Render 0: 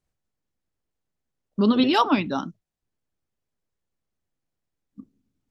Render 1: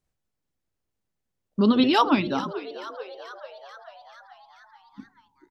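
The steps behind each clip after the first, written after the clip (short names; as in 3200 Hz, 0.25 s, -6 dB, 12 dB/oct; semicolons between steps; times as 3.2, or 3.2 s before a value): frequency-shifting echo 0.436 s, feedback 63%, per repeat +96 Hz, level -15 dB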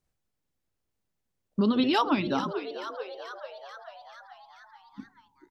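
compressor 3:1, threshold -22 dBFS, peak gain reduction 6.5 dB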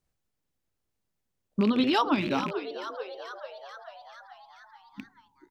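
rattling part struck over -35 dBFS, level -26 dBFS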